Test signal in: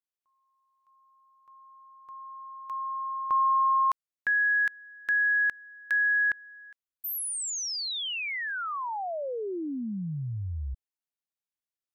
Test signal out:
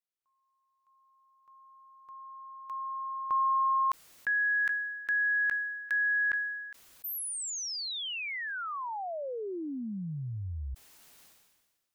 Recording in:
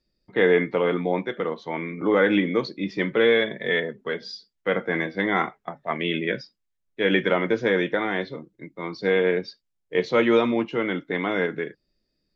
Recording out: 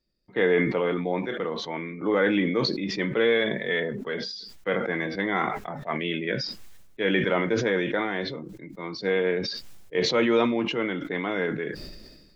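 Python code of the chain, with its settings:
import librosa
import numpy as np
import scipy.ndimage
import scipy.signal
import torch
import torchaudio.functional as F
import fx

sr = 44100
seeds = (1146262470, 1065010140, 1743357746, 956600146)

y = fx.sustainer(x, sr, db_per_s=41.0)
y = F.gain(torch.from_numpy(y), -3.5).numpy()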